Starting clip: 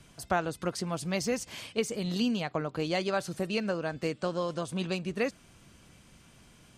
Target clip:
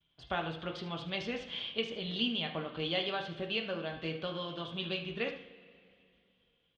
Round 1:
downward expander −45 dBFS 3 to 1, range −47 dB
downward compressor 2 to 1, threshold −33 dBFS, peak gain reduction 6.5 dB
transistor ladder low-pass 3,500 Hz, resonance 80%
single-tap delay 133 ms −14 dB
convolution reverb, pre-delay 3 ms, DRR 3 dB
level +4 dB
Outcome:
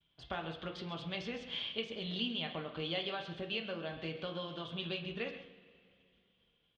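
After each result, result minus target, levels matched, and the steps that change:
echo 58 ms late; downward compressor: peak gain reduction +6.5 dB
change: single-tap delay 75 ms −14 dB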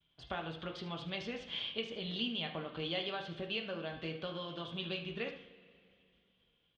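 downward compressor: peak gain reduction +6.5 dB
remove: downward compressor 2 to 1, threshold −33 dBFS, peak gain reduction 6.5 dB

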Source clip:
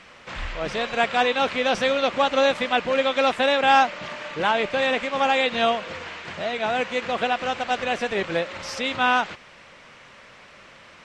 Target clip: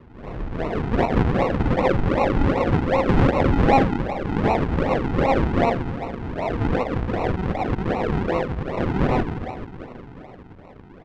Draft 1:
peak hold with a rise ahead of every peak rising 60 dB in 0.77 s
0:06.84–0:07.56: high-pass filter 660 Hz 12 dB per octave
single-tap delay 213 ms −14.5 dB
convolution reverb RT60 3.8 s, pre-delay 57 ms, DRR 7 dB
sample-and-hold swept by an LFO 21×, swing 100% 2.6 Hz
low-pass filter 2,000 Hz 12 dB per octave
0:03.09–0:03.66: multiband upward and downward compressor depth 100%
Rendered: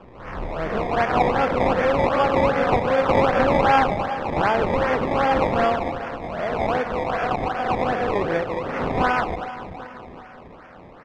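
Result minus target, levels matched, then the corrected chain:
sample-and-hold swept by an LFO: distortion −19 dB
peak hold with a rise ahead of every peak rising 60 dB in 0.77 s
0:06.84–0:07.56: high-pass filter 660 Hz 12 dB per octave
single-tap delay 213 ms −14.5 dB
convolution reverb RT60 3.8 s, pre-delay 57 ms, DRR 7 dB
sample-and-hold swept by an LFO 53×, swing 100% 2.6 Hz
low-pass filter 2,000 Hz 12 dB per octave
0:03.09–0:03.66: multiband upward and downward compressor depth 100%

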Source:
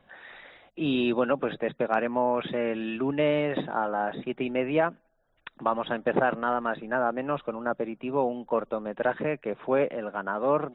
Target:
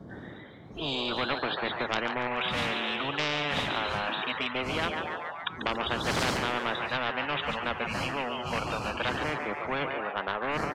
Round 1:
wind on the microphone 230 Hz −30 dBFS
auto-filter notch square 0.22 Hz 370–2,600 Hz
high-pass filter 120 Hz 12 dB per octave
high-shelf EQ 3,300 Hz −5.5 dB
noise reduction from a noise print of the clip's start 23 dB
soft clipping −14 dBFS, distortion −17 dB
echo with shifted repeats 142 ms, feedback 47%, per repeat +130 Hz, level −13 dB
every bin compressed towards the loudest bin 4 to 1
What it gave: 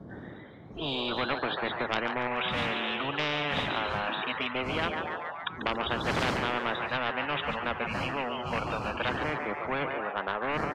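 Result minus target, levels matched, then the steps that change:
8,000 Hz band −7.5 dB
change: high-shelf EQ 3,300 Hz +4.5 dB

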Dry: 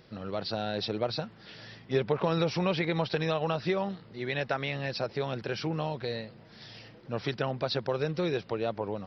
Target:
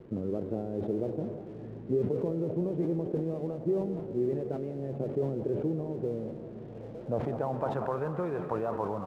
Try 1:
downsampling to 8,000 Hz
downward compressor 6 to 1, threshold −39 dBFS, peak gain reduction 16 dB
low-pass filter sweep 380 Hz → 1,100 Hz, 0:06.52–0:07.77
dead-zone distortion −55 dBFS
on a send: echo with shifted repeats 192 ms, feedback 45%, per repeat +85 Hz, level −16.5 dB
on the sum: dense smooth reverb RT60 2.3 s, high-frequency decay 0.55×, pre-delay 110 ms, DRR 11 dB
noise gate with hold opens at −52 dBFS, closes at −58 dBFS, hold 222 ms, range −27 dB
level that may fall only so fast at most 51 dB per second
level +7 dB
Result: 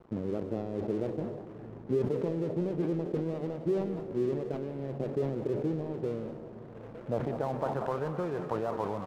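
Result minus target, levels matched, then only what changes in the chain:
dead-zone distortion: distortion +11 dB
change: dead-zone distortion −66.5 dBFS

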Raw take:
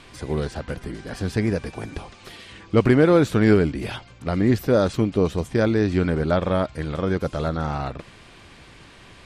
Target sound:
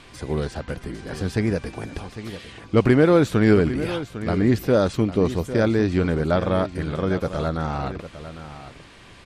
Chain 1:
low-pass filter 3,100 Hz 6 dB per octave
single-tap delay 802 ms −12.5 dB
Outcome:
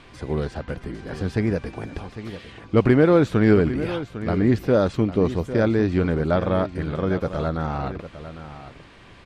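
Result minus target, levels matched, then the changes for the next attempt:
4,000 Hz band −3.5 dB
remove: low-pass filter 3,100 Hz 6 dB per octave

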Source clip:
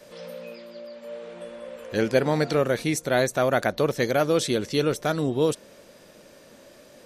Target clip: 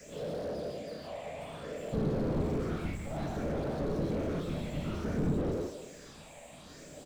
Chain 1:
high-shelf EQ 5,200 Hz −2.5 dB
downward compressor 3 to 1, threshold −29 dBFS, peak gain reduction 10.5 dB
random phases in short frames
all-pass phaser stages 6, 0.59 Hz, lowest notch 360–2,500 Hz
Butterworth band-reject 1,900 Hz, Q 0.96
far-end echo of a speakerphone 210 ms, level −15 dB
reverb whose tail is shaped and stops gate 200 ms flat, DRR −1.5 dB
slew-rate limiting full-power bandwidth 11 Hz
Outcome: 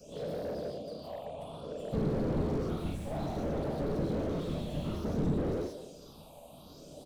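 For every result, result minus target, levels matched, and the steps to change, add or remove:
2,000 Hz band −4.5 dB; 8,000 Hz band −4.0 dB
remove: Butterworth band-reject 1,900 Hz, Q 0.96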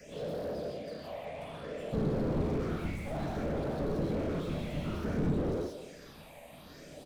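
8,000 Hz band −4.5 dB
add after downward compressor: low-pass with resonance 7,500 Hz, resonance Q 8.1

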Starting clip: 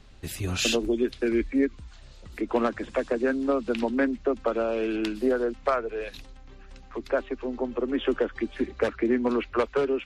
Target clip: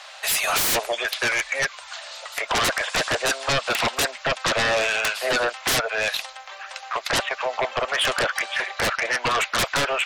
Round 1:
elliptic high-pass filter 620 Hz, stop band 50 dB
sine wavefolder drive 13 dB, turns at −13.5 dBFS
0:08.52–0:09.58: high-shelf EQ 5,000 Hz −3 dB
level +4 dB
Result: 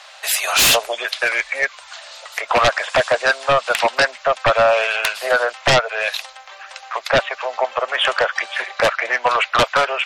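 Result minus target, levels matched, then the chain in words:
sine wavefolder: distortion −11 dB
elliptic high-pass filter 620 Hz, stop band 50 dB
sine wavefolder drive 13 dB, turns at −21.5 dBFS
0:08.52–0:09.58: high-shelf EQ 5,000 Hz −3 dB
level +4 dB

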